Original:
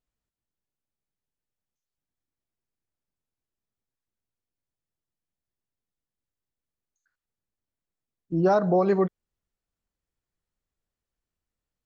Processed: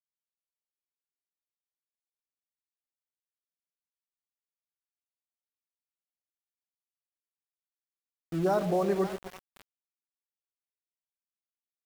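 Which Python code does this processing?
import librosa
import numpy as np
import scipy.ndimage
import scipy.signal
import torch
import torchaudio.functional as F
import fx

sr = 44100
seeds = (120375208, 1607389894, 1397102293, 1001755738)

y = fx.echo_split(x, sr, split_hz=720.0, low_ms=120, high_ms=544, feedback_pct=52, wet_db=-10.5)
y = fx.dmg_noise_colour(y, sr, seeds[0], colour='pink', level_db=-56.0)
y = np.where(np.abs(y) >= 10.0 ** (-32.0 / 20.0), y, 0.0)
y = y * librosa.db_to_amplitude(-6.0)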